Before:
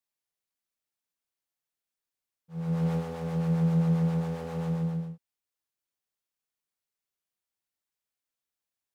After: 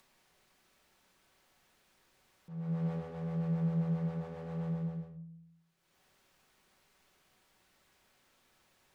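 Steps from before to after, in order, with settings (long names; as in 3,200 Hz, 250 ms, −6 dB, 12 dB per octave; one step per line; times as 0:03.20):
low-pass filter 2,500 Hz 6 dB per octave
upward compression, threshold −36 dBFS
convolution reverb RT60 0.60 s, pre-delay 5 ms, DRR 7.5 dB
level −8 dB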